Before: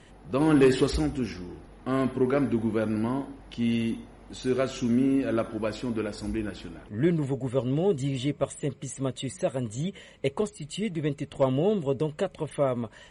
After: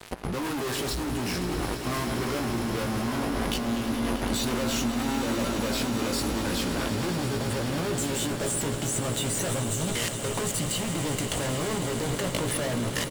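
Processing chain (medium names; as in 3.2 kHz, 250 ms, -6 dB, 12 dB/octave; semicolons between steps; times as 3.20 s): 7.96–8.56 s: ten-band graphic EQ 125 Hz -10 dB, 500 Hz +5 dB, 8 kHz +12 dB; fuzz box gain 39 dB, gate -47 dBFS; doubling 17 ms -5 dB; peak limiter -19 dBFS, peak gain reduction 12 dB; treble shelf 5.1 kHz +6 dB; level held to a coarse grid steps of 17 dB; echo with a slow build-up 106 ms, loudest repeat 8, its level -14 dB; trim +4 dB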